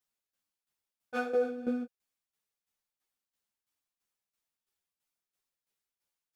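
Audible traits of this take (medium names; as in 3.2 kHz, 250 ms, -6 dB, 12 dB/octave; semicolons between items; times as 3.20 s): tremolo saw down 3 Hz, depth 75%; a shimmering, thickened sound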